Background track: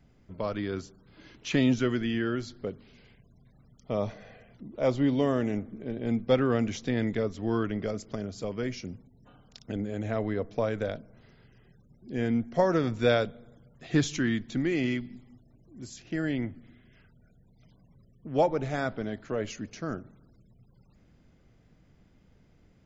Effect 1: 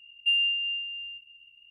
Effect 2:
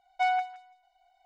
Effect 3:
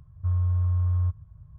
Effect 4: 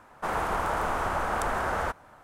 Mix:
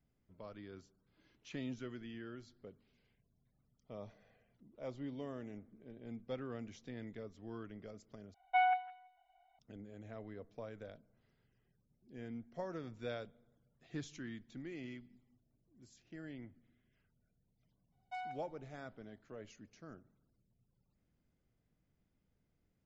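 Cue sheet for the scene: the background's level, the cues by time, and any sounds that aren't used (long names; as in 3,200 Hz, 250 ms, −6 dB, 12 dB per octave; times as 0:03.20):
background track −19 dB
0:08.34: overwrite with 2 −4 dB + Butterworth low-pass 3,200 Hz
0:17.92: mix in 2 −18 dB
not used: 1, 3, 4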